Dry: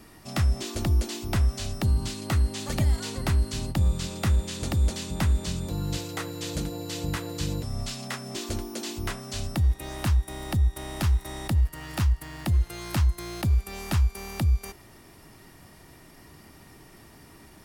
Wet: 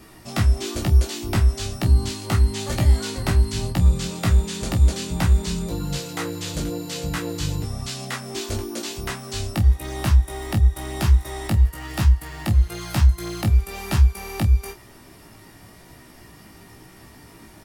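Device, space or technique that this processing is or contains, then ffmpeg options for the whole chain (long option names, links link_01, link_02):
double-tracked vocal: -filter_complex "[0:a]asplit=2[link_01][link_02];[link_02]adelay=28,volume=-9.5dB[link_03];[link_01][link_03]amix=inputs=2:normalize=0,flanger=delay=15.5:depth=2.9:speed=1,volume=7dB"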